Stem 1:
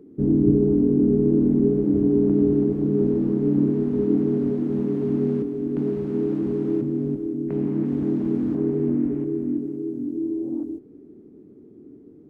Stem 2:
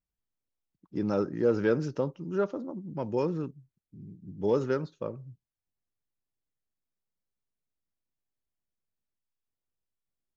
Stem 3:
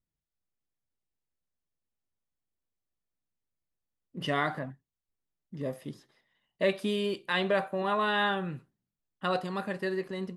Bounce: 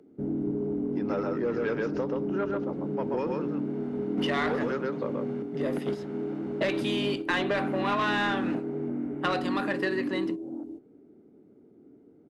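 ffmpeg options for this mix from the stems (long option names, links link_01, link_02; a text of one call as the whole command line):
ffmpeg -i stem1.wav -i stem2.wav -i stem3.wav -filter_complex "[0:a]aecho=1:1:1.4:0.41,volume=-1dB[link_01];[1:a]lowpass=frequency=2700:poles=1,volume=-4dB,asplit=2[link_02][link_03];[link_03]volume=-3dB[link_04];[2:a]agate=range=-33dB:threshold=-51dB:ratio=3:detection=peak,volume=0.5dB,asplit=2[link_05][link_06];[link_06]apad=whole_len=542223[link_07];[link_01][link_07]sidechaingate=range=-10dB:threshold=-39dB:ratio=16:detection=peak[link_08];[link_04]aecho=0:1:131:1[link_09];[link_08][link_02][link_05][link_09]amix=inputs=4:normalize=0,asplit=2[link_10][link_11];[link_11]highpass=frequency=720:poles=1,volume=18dB,asoftclip=type=tanh:threshold=-10.5dB[link_12];[link_10][link_12]amix=inputs=2:normalize=0,lowpass=frequency=2300:poles=1,volume=-6dB,acrossover=split=170|1700[link_13][link_14][link_15];[link_13]acompressor=threshold=-43dB:ratio=4[link_16];[link_14]acompressor=threshold=-27dB:ratio=4[link_17];[link_15]acompressor=threshold=-32dB:ratio=4[link_18];[link_16][link_17][link_18]amix=inputs=3:normalize=0" out.wav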